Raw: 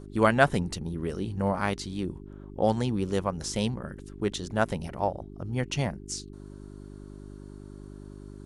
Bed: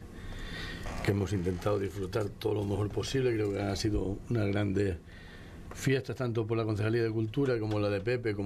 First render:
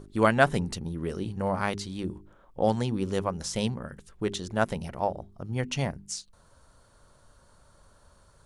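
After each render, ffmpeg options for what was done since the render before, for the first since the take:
ffmpeg -i in.wav -af "bandreject=frequency=50:width_type=h:width=4,bandreject=frequency=100:width_type=h:width=4,bandreject=frequency=150:width_type=h:width=4,bandreject=frequency=200:width_type=h:width=4,bandreject=frequency=250:width_type=h:width=4,bandreject=frequency=300:width_type=h:width=4,bandreject=frequency=350:width_type=h:width=4,bandreject=frequency=400:width_type=h:width=4" out.wav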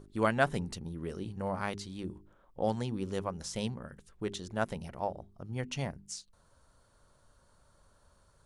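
ffmpeg -i in.wav -af "volume=-6.5dB" out.wav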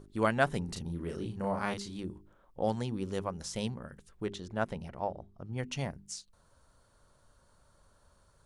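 ffmpeg -i in.wav -filter_complex "[0:a]asettb=1/sr,asplit=3[link_01][link_02][link_03];[link_01]atrim=end=0.654[link_04];[link_02]atrim=start=0.65:end=2,asetpts=PTS-STARTPTS,afade=type=in:duration=0.004:curve=qsin,afade=type=out:start_time=1.346:duration=0.004:curve=qsin,asplit=2[link_05][link_06];[link_06]adelay=35,volume=-3.5dB[link_07];[link_05][link_07]amix=inputs=2:normalize=0,atrim=end_sample=59535[link_08];[link_03]atrim=start=1.996[link_09];[link_04][link_08]acrossfade=duration=0.004:curve1=hsin:curve2=qsin[link_10];[link_10][link_09]acrossfade=duration=0.004:curve1=qsin:curve2=hsin,asettb=1/sr,asplit=3[link_11][link_12][link_13];[link_11]atrim=end=4.264[link_14];[link_12]atrim=start=4.26:end=5.58,asetpts=PTS-STARTPTS,afade=type=in:duration=0.004:curve=qsin,afade=type=out:start_time=1.316:duration=0.004:curve=qsin,highshelf=frequency=5900:gain=-11[link_15];[link_13]atrim=start=5.576[link_16];[link_14][link_15]acrossfade=duration=0.004:curve1=hsin:curve2=qsin[link_17];[link_17][link_16]acrossfade=duration=0.004:curve1=qsin:curve2=hsin" out.wav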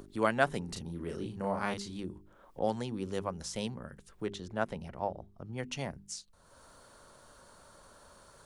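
ffmpeg -i in.wav -filter_complex "[0:a]acrossover=split=190[link_01][link_02];[link_01]alimiter=level_in=16.5dB:limit=-24dB:level=0:latency=1,volume=-16.5dB[link_03];[link_02]acompressor=mode=upward:threshold=-46dB:ratio=2.5[link_04];[link_03][link_04]amix=inputs=2:normalize=0" out.wav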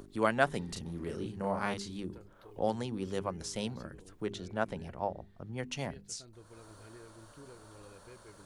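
ffmpeg -i in.wav -i bed.wav -filter_complex "[1:a]volume=-24dB[link_01];[0:a][link_01]amix=inputs=2:normalize=0" out.wav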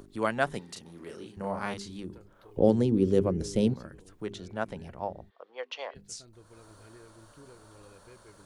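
ffmpeg -i in.wav -filter_complex "[0:a]asettb=1/sr,asplit=3[link_01][link_02][link_03];[link_01]atrim=end=0.594[link_04];[link_02]atrim=start=0.59:end=1.37,asetpts=PTS-STARTPTS,afade=type=in:duration=0.004:curve=qsin,afade=type=out:start_time=0.776:duration=0.004:curve=qsin,highpass=frequency=470:poles=1[link_05];[link_03]atrim=start=1.366[link_06];[link_04][link_05]acrossfade=duration=0.004:curve1=hsin:curve2=qsin[link_07];[link_07][link_06]acrossfade=duration=0.004:curve1=qsin:curve2=hsin,asettb=1/sr,asplit=3[link_08][link_09][link_10];[link_08]atrim=end=2.574[link_11];[link_09]atrim=start=2.57:end=3.74,asetpts=PTS-STARTPTS,afade=type=in:duration=0.004:curve=qsin,afade=type=out:start_time=1.166:duration=0.004:curve=qsin,lowshelf=frequency=600:width_type=q:width=1.5:gain=11.5[link_12];[link_10]atrim=start=3.736[link_13];[link_11][link_12]acrossfade=duration=0.004:curve1=hsin:curve2=qsin[link_14];[link_14][link_13]acrossfade=duration=0.004:curve1=qsin:curve2=hsin,asplit=3[link_15][link_16][link_17];[link_15]afade=type=out:start_time=5.29:duration=0.02[link_18];[link_16]highpass=frequency=490:width=0.5412,highpass=frequency=490:width=1.3066,equalizer=frequency=490:width_type=q:width=4:gain=8,equalizer=frequency=1100:width_type=q:width=4:gain=7,equalizer=frequency=3300:width_type=q:width=4:gain=4,lowpass=frequency=4700:width=0.5412,lowpass=frequency=4700:width=1.3066,afade=type=in:start_time=5.29:duration=0.02,afade=type=out:start_time=5.94:duration=0.02[link_19];[link_17]afade=type=in:start_time=5.94:duration=0.02[link_20];[link_18][link_19][link_20]amix=inputs=3:normalize=0" out.wav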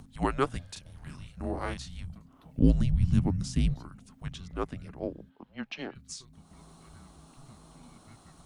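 ffmpeg -i in.wav -af "afreqshift=-270" out.wav

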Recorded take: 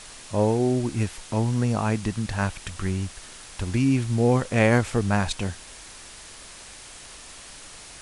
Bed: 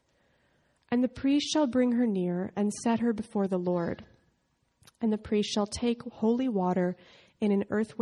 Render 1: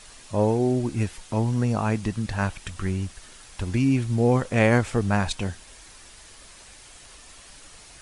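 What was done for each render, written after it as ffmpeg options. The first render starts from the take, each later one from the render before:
ffmpeg -i in.wav -af "afftdn=noise_reduction=6:noise_floor=-44" out.wav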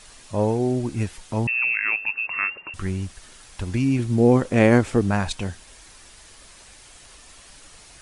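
ffmpeg -i in.wav -filter_complex "[0:a]asettb=1/sr,asplit=3[link_01][link_02][link_03];[link_01]atrim=end=1.474[link_04];[link_02]atrim=start=1.47:end=2.74,asetpts=PTS-STARTPTS,afade=type=in:duration=0.004:curve=qsin,afade=type=out:start_time=1.266:duration=0.004:curve=qsin,lowpass=frequency=2400:width_type=q:width=0.5098,lowpass=frequency=2400:width_type=q:width=0.6013,lowpass=frequency=2400:width_type=q:width=0.9,lowpass=frequency=2400:width_type=q:width=2.563,afreqshift=-2800[link_05];[link_03]atrim=start=2.736[link_06];[link_04][link_05]acrossfade=duration=0.004:curve1=hsin:curve2=qsin[link_07];[link_07][link_06]acrossfade=duration=0.004:curve1=qsin:curve2=hsin,asettb=1/sr,asplit=3[link_08][link_09][link_10];[link_08]atrim=end=3.994[link_11];[link_09]atrim=start=3.99:end=5.11,asetpts=PTS-STARTPTS,afade=type=in:duration=0.004:curve=qsin,afade=type=out:start_time=1.116:duration=0.004:curve=qsin,equalizer=frequency=310:width_type=o:width=1.3:gain=7.5[link_12];[link_10]atrim=start=5.106[link_13];[link_11][link_12]acrossfade=duration=0.004:curve1=hsin:curve2=qsin[link_14];[link_14][link_13]acrossfade=duration=0.004:curve1=qsin:curve2=hsin" out.wav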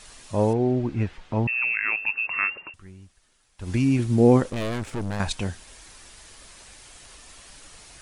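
ffmpeg -i in.wav -filter_complex "[0:a]asettb=1/sr,asplit=3[link_01][link_02][link_03];[link_01]atrim=end=0.534[link_04];[link_02]atrim=start=0.53:end=1.97,asetpts=PTS-STARTPTS,afade=type=in:duration=0.004:curve=qsin,afade=type=out:start_time=1.436:duration=0.004:curve=qsin,lowpass=2800[link_05];[link_03]atrim=start=1.966[link_06];[link_04][link_05]acrossfade=duration=0.004:curve1=hsin:curve2=qsin[link_07];[link_07][link_06]acrossfade=duration=0.004:curve1=qsin:curve2=hsin,asettb=1/sr,asplit=3[link_08][link_09][link_10];[link_08]atrim=end=4.504[link_11];[link_09]atrim=start=4.5:end=5.2,asetpts=PTS-STARTPTS,afade=type=in:duration=0.004:curve=qsin,afade=type=out:start_time=0.696:duration=0.004:curve=qsin,aeval=exprs='(tanh(20*val(0)+0.8)-tanh(0.8))/20':channel_layout=same[link_12];[link_10]atrim=start=5.196[link_13];[link_11][link_12]acrossfade=duration=0.004:curve1=hsin:curve2=qsin[link_14];[link_14][link_13]acrossfade=duration=0.004:curve1=qsin:curve2=hsin,asplit=3[link_15][link_16][link_17];[link_15]atrim=end=2.76,asetpts=PTS-STARTPTS,afade=type=out:start_time=2.63:duration=0.13:silence=0.11885[link_18];[link_16]atrim=start=2.76:end=3.58,asetpts=PTS-STARTPTS,volume=-18.5dB[link_19];[link_17]atrim=start=3.58,asetpts=PTS-STARTPTS,afade=type=in:duration=0.13:silence=0.11885[link_20];[link_18][link_19][link_20]concat=n=3:v=0:a=1" out.wav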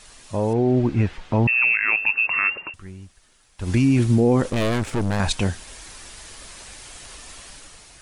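ffmpeg -i in.wav -af "alimiter=limit=-15.5dB:level=0:latency=1:release=22,dynaudnorm=framelen=120:gausssize=9:maxgain=6.5dB" out.wav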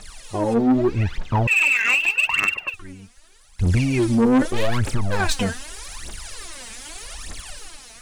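ffmpeg -i in.wav -af "aphaser=in_gain=1:out_gain=1:delay=4.6:decay=0.78:speed=0.82:type=triangular,asoftclip=type=tanh:threshold=-12dB" out.wav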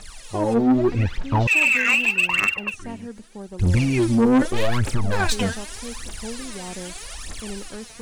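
ffmpeg -i in.wav -i bed.wav -filter_complex "[1:a]volume=-8.5dB[link_01];[0:a][link_01]amix=inputs=2:normalize=0" out.wav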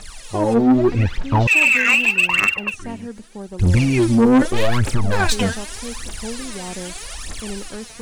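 ffmpeg -i in.wav -af "volume=3.5dB" out.wav

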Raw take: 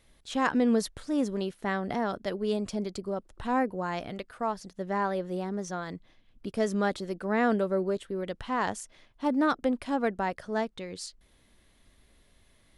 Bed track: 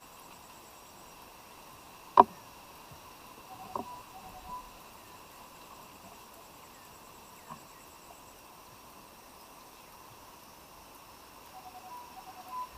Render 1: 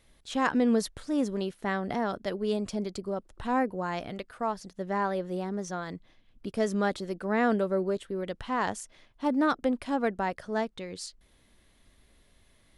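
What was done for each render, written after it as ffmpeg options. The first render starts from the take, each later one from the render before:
ffmpeg -i in.wav -af anull out.wav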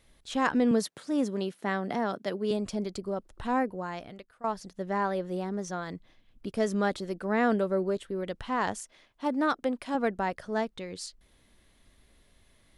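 ffmpeg -i in.wav -filter_complex "[0:a]asettb=1/sr,asplit=3[link_01][link_02][link_03];[link_01]atrim=end=0.714[link_04];[link_02]atrim=start=0.71:end=2.51,asetpts=PTS-STARTPTS,afade=type=in:duration=0.004:curve=qsin,afade=type=out:start_time=1.796:duration=0.004:curve=qsin,highpass=frequency=140:width=0.5412,highpass=frequency=140:width=1.3066[link_05];[link_03]atrim=start=2.506[link_06];[link_04][link_05]acrossfade=duration=0.004:curve1=hsin:curve2=qsin[link_07];[link_07][link_06]acrossfade=duration=0.004:curve1=qsin:curve2=hsin,asettb=1/sr,asplit=3[link_08][link_09][link_10];[link_08]atrim=end=8.824[link_11];[link_09]atrim=start=8.82:end=9.95,asetpts=PTS-STARTPTS,afade=type=in:duration=0.004:curve=qsin,afade=type=out:start_time=1.126:duration=0.004:curve=qsin,lowshelf=frequency=170:gain=-11[link_12];[link_10]atrim=start=9.946[link_13];[link_11][link_12]acrossfade=duration=0.004:curve1=hsin:curve2=qsin[link_14];[link_14][link_13]acrossfade=duration=0.004:curve1=qsin:curve2=hsin,asplit=2[link_15][link_16];[link_15]atrim=end=4.44,asetpts=PTS-STARTPTS,afade=type=out:start_time=3.5:duration=0.94:silence=0.133352[link_17];[link_16]atrim=start=4.44,asetpts=PTS-STARTPTS,afade=type=in:duration=0.004:curve=hsin:silence=0.133352[link_18];[link_17][link_18]concat=n=2:v=0:a=1" out.wav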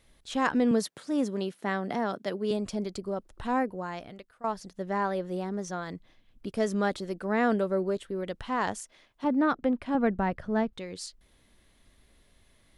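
ffmpeg -i in.wav -filter_complex "[0:a]asettb=1/sr,asplit=3[link_01][link_02][link_03];[link_01]atrim=end=9.244[link_04];[link_02]atrim=start=9.24:end=10.73,asetpts=PTS-STARTPTS,afade=type=in:duration=0.004:curve=qsin,afade=type=out:start_time=1.486:duration=0.004:curve=qsin,bass=frequency=250:gain=10,treble=frequency=4000:gain=-13[link_05];[link_03]atrim=start=10.726[link_06];[link_04][link_05]acrossfade=duration=0.004:curve1=hsin:curve2=qsin[link_07];[link_07][link_06]acrossfade=duration=0.004:curve1=qsin:curve2=hsin" out.wav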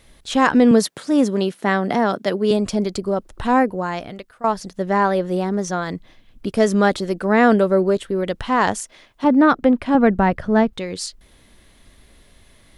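ffmpeg -i in.wav -af "volume=11.5dB,alimiter=limit=-3dB:level=0:latency=1" out.wav

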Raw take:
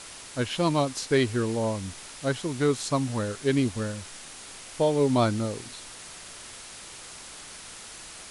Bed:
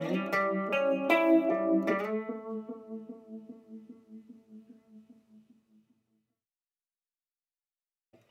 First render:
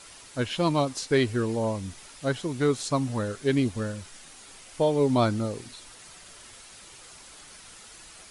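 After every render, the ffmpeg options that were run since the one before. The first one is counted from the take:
ffmpeg -i in.wav -af "afftdn=noise_reduction=7:noise_floor=-44" out.wav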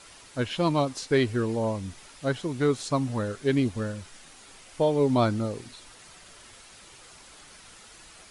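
ffmpeg -i in.wav -af "highshelf=frequency=5400:gain=-5" out.wav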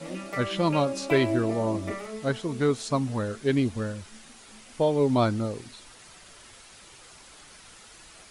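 ffmpeg -i in.wav -i bed.wav -filter_complex "[1:a]volume=-5dB[link_01];[0:a][link_01]amix=inputs=2:normalize=0" out.wav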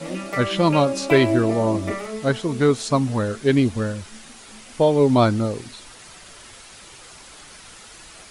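ffmpeg -i in.wav -af "volume=6.5dB" out.wav

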